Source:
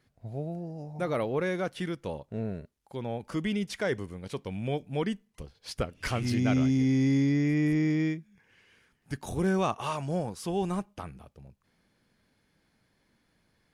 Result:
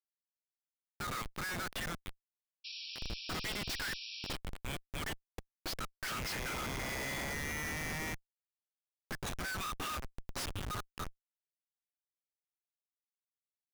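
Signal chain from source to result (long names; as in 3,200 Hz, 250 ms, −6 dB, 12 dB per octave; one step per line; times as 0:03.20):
Chebyshev high-pass with heavy ripple 1,200 Hz, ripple 3 dB
comparator with hysteresis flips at −45 dBFS
sound drawn into the spectrogram noise, 0:02.64–0:04.36, 2,300–5,700 Hz −54 dBFS
level +8.5 dB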